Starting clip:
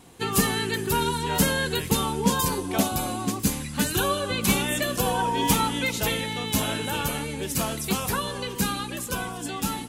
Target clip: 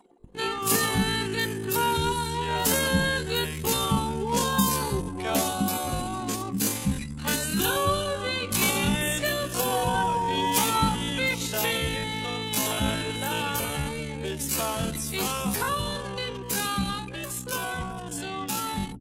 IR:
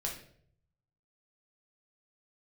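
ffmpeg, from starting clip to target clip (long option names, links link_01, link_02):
-filter_complex "[0:a]acompressor=mode=upward:threshold=-32dB:ratio=2.5,acrossover=split=250[link_01][link_02];[link_01]adelay=130[link_03];[link_03][link_02]amix=inputs=2:normalize=0,atempo=0.52,anlmdn=1.58"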